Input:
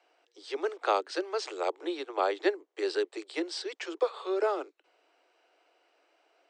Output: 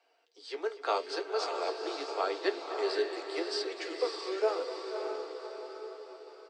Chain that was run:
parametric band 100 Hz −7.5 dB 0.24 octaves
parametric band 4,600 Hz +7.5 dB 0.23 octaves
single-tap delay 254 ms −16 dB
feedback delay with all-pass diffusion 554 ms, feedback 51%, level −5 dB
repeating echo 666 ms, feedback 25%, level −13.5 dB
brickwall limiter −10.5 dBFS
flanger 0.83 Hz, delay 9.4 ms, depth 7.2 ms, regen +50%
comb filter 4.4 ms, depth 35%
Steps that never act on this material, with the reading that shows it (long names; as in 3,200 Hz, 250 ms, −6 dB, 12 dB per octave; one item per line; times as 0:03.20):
parametric band 100 Hz: nothing at its input below 270 Hz
brickwall limiter −10.5 dBFS: peak of its input −13.0 dBFS